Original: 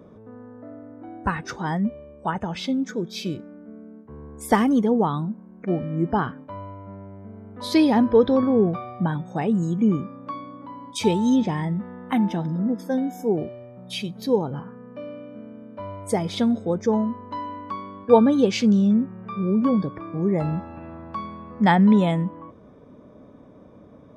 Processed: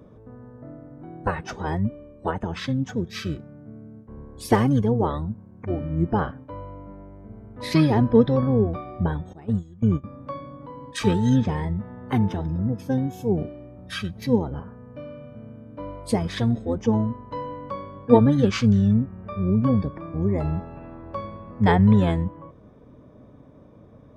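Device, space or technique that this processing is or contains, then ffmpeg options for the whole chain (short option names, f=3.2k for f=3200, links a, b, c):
octave pedal: -filter_complex "[0:a]asplit=2[a][b];[b]asetrate=22050,aresample=44100,atempo=2,volume=-1dB[c];[a][c]amix=inputs=2:normalize=0,asettb=1/sr,asplit=3[d][e][f];[d]atrim=end=9.334[g];[e]atrim=start=9.33:end=10.04,asetpts=PTS-STARTPTS,afade=t=in:d=0.004:c=qsin,afade=t=out:st=0.706:d=0.004:c=qsin,agate=range=-19dB:threshold=-17dB:ratio=16:detection=peak[h];[f]atrim=start=10.036[i];[g][h]acrossfade=d=0.004:c1=hsin:c2=qsin[j];[j][i]acrossfade=d=0.004:c1=qsin:c2=hsin,volume=-3dB"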